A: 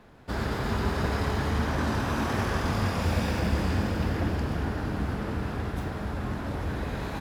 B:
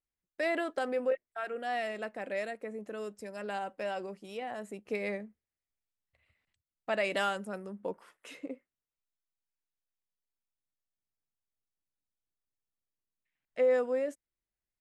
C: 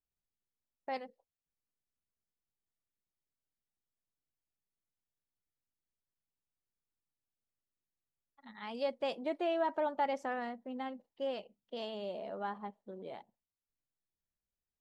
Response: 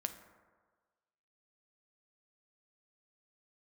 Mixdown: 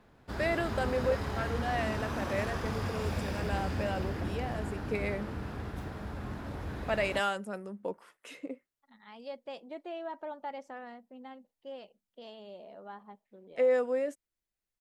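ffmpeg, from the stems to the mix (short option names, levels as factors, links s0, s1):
-filter_complex "[0:a]volume=0.422[s0];[1:a]volume=1.06[s1];[2:a]adelay=450,volume=0.447[s2];[s0][s1][s2]amix=inputs=3:normalize=0"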